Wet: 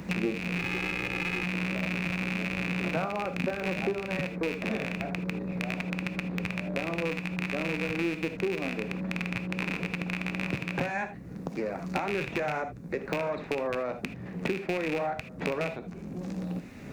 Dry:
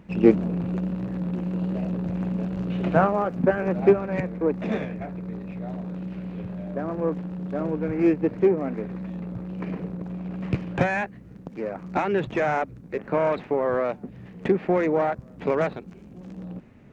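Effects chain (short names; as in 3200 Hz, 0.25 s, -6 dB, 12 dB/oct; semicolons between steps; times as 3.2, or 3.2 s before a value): rattling part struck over -30 dBFS, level -13 dBFS; 0.58–1.43 comb 2.4 ms, depth 61%; non-linear reverb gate 0.1 s flat, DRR 8.5 dB; compressor 2:1, threshold -28 dBFS, peak gain reduction 10 dB; bell 3100 Hz -7.5 dB 0.31 oct; three-band squash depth 70%; gain -2.5 dB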